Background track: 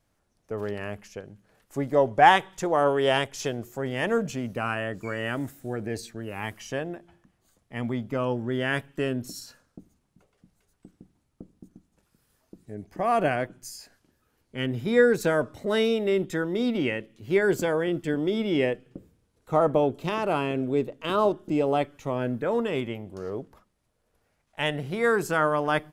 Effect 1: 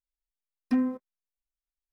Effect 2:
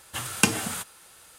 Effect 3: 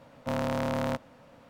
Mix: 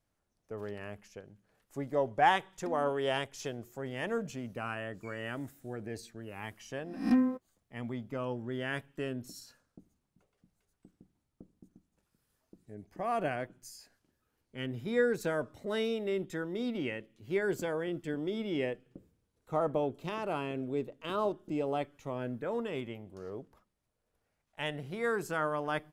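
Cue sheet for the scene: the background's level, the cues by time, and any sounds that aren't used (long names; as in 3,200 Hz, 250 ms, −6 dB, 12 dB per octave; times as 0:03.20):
background track −9 dB
0:01.95: mix in 1 −10.5 dB + downward compressor, threshold −32 dBFS
0:06.40: mix in 1 −1 dB + peak hold with a rise ahead of every peak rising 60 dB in 0.49 s
not used: 2, 3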